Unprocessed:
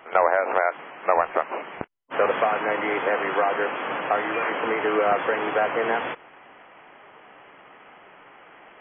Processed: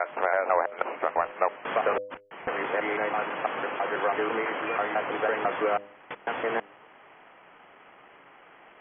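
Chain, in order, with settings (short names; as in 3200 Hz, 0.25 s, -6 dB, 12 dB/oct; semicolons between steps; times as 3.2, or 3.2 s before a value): slices in reverse order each 0.165 s, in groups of 5; de-hum 101.3 Hz, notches 6; gain -4 dB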